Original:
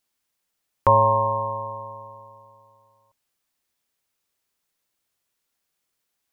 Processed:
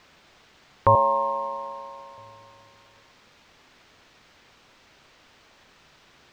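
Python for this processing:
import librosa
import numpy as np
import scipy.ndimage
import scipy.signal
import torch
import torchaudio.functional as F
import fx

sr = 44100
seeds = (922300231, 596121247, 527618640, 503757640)

y = fx.cheby_ripple_highpass(x, sr, hz=190.0, ripple_db=6, at=(0.95, 2.18))
y = fx.quant_dither(y, sr, seeds[0], bits=8, dither='triangular')
y = fx.air_absorb(y, sr, metres=190.0)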